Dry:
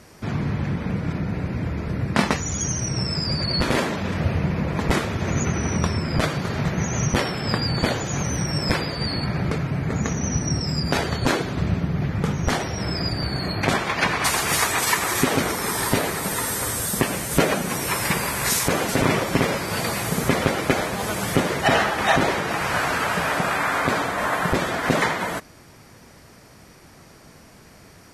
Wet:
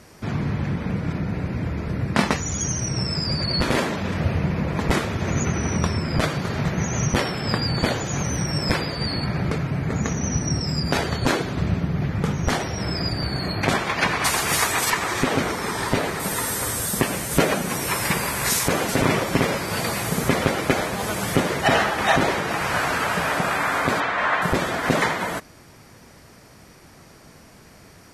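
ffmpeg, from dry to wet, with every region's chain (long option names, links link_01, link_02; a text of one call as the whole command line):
ffmpeg -i in.wav -filter_complex "[0:a]asettb=1/sr,asplit=3[link_01][link_02][link_03];[link_01]atrim=end=14.904[link_04];[link_02]atrim=start=14.9:end=16.2,asetpts=PTS-STARTPTS,afade=type=in:duration=0.004:curve=qsin,afade=type=out:start_time=1.296:duration=0.004:curve=qsin,highshelf=frequency=6700:gain=-7.5,aeval=exprs='clip(val(0),-1,0.158)':channel_layout=same,acrossover=split=8600[link_05][link_06];[link_06]acompressor=threshold=-44dB:ratio=4:attack=1:release=60[link_07];[link_05][link_07]amix=inputs=2:normalize=0[link_08];[link_03]atrim=start=16.196[link_09];[link_04][link_08]acrossfade=duration=0.004:curve1=hsin:curve2=qsin[link_10];[link_10][link_09]acrossfade=duration=0.004:curve1=qsin:curve2=hsin,asettb=1/sr,asplit=3[link_11][link_12][link_13];[link_11]atrim=end=24.004[link_14];[link_12]atrim=start=24:end=24.42,asetpts=PTS-STARTPTS,afade=type=in:duration=0.004:curve=qsin,afade=type=out:start_time=0.416:duration=0.004:curve=qsin,lowpass=3000,tiltshelf=frequency=720:gain=-6.5[link_15];[link_13]atrim=start=24.416[link_16];[link_14][link_15]acrossfade=duration=0.004:curve1=hsin:curve2=qsin[link_17];[link_17][link_16]acrossfade=duration=0.004:curve1=qsin:curve2=hsin" out.wav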